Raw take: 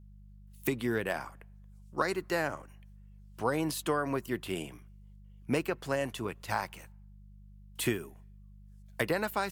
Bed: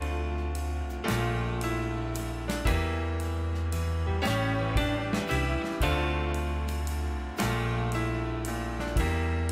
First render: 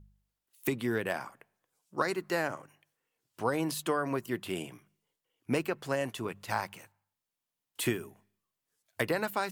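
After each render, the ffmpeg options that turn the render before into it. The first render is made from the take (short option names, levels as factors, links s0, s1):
-af "bandreject=f=50:t=h:w=4,bandreject=f=100:t=h:w=4,bandreject=f=150:t=h:w=4,bandreject=f=200:t=h:w=4"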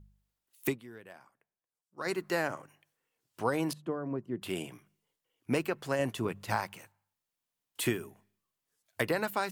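-filter_complex "[0:a]asettb=1/sr,asplit=3[s0][s1][s2];[s0]atrim=end=3.734[s3];[s1]atrim=start=3.73:end=4.42,asetpts=PTS-STARTPTS,afade=t=in:d=0.004:c=qsin,afade=t=out:st=0.686:d=0.004:c=qsin,bandpass=f=190:t=q:w=0.65[s4];[s2]atrim=start=4.416[s5];[s3][s4]acrossfade=d=0.004:c1=hsin:c2=qsin[s6];[s6][s5]acrossfade=d=0.004:c1=qsin:c2=hsin,asettb=1/sr,asplit=3[s7][s8][s9];[s7]atrim=end=5.994[s10];[s8]atrim=start=5.99:end=6.56,asetpts=PTS-STARTPTS,afade=t=in:d=0.004:c=qsin,afade=t=out:st=0.566:d=0.004:c=qsin,lowshelf=f=460:g=5.5[s11];[s9]atrim=start=6.556[s12];[s10][s11]acrossfade=d=0.004:c1=hsin:c2=qsin[s13];[s13][s12]acrossfade=d=0.004:c1=qsin:c2=hsin,asplit=3[s14][s15][s16];[s14]atrim=end=1.1,asetpts=PTS-STARTPTS,afade=t=out:st=0.71:d=0.39:c=exp:silence=0.125893[s17];[s15]atrim=start=1.1:end=1.68,asetpts=PTS-STARTPTS,volume=0.126[s18];[s16]atrim=start=1.68,asetpts=PTS-STARTPTS,afade=t=in:d=0.39:c=exp:silence=0.125893[s19];[s17][s18][s19]concat=n=3:v=0:a=1"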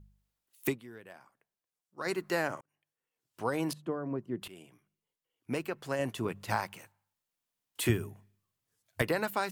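-filter_complex "[0:a]asettb=1/sr,asplit=3[s0][s1][s2];[s0]atrim=end=7.894[s3];[s1]atrim=start=7.89:end=9.02,asetpts=PTS-STARTPTS,afade=t=in:d=0.004:c=qsin,afade=t=out:st=1.126:d=0.004:c=qsin,equalizer=f=85:t=o:w=1.6:g=15[s4];[s2]atrim=start=9.016[s5];[s3][s4]acrossfade=d=0.004:c1=hsin:c2=qsin[s6];[s6][s5]acrossfade=d=0.004:c1=qsin:c2=hsin,asplit=3[s7][s8][s9];[s7]atrim=end=2.61,asetpts=PTS-STARTPTS,afade=t=out:st=2.606:d=0.004:c=hsin[s10];[s8]atrim=start=2.61:end=4.48,asetpts=PTS-STARTPTS,afade=t=in:d=1.12,afade=t=out:st=1.866:d=0.004:c=hsin:silence=0.133352[s11];[s9]atrim=start=4.48,asetpts=PTS-STARTPTS,afade=t=in:d=1.98:silence=0.133352[s12];[s10][s11][s12]concat=n=3:v=0:a=1"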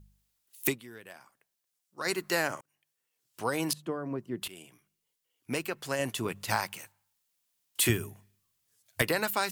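-af "highshelf=f=2300:g=10.5"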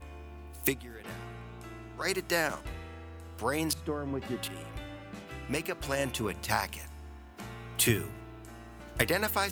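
-filter_complex "[1:a]volume=0.168[s0];[0:a][s0]amix=inputs=2:normalize=0"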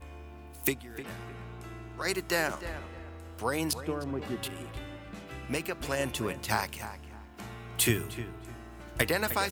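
-filter_complex "[0:a]asplit=2[s0][s1];[s1]adelay=306,lowpass=f=2500:p=1,volume=0.266,asplit=2[s2][s3];[s3]adelay=306,lowpass=f=2500:p=1,volume=0.28,asplit=2[s4][s5];[s5]adelay=306,lowpass=f=2500:p=1,volume=0.28[s6];[s0][s2][s4][s6]amix=inputs=4:normalize=0"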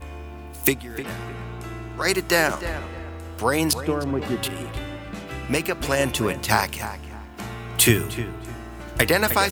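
-af "volume=2.99,alimiter=limit=0.794:level=0:latency=1"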